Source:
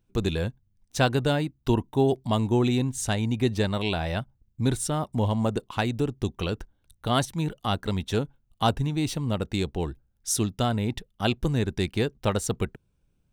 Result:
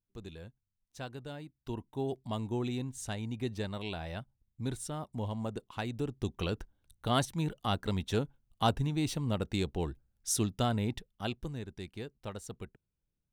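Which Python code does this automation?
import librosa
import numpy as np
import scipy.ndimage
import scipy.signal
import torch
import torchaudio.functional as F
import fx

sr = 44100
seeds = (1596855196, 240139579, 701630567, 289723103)

y = fx.gain(x, sr, db=fx.line((1.25, -20.0), (2.2, -11.5), (5.72, -11.5), (6.42, -5.0), (10.84, -5.0), (11.67, -16.5)))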